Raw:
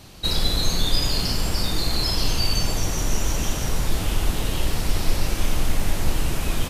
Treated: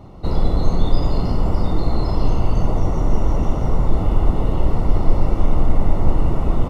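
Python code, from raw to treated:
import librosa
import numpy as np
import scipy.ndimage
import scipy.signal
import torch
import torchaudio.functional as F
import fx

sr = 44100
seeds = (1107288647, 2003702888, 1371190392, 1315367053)

y = scipy.signal.savgol_filter(x, 65, 4, mode='constant')
y = F.gain(torch.from_numpy(y), 6.5).numpy()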